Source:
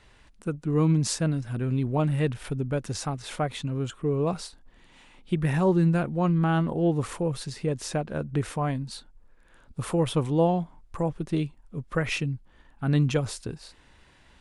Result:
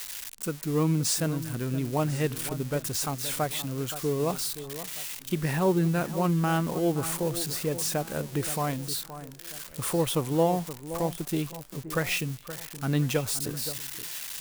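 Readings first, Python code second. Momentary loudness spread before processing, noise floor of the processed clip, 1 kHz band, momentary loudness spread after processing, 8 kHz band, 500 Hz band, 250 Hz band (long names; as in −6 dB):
13 LU, −44 dBFS, 0.0 dB, 9 LU, +7.5 dB, −0.5 dB, −2.5 dB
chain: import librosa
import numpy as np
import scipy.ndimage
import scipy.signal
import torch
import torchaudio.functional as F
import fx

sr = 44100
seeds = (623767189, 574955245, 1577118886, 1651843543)

p1 = x + 0.5 * 10.0 ** (-26.0 / 20.0) * np.diff(np.sign(x), prepend=np.sign(x[:1]))
p2 = fx.low_shelf(p1, sr, hz=180.0, db=-7.0)
y = p2 + fx.echo_alternate(p2, sr, ms=522, hz=1700.0, feedback_pct=59, wet_db=-12.5, dry=0)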